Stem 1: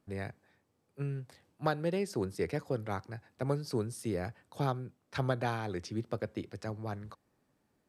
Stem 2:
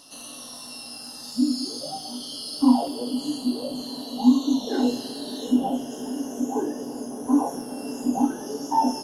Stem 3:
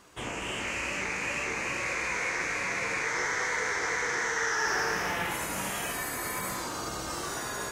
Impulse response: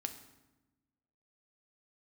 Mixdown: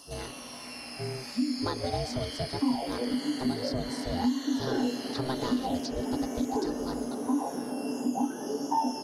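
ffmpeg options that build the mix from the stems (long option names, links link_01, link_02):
-filter_complex "[0:a]highshelf=frequency=3400:width_type=q:width=3:gain=10,aecho=1:1:5.3:0.65,aeval=exprs='val(0)*sin(2*PI*260*n/s)':channel_layout=same,volume=1.5dB[link_01];[1:a]highpass=110,bandreject=frequency=3800:width=5.6,volume=0dB[link_02];[2:a]volume=-17dB[link_03];[link_01][link_02][link_03]amix=inputs=3:normalize=0,acrossover=split=2000|4600[link_04][link_05][link_06];[link_04]acompressor=threshold=-26dB:ratio=4[link_07];[link_05]acompressor=threshold=-41dB:ratio=4[link_08];[link_06]acompressor=threshold=-50dB:ratio=4[link_09];[link_07][link_08][link_09]amix=inputs=3:normalize=0"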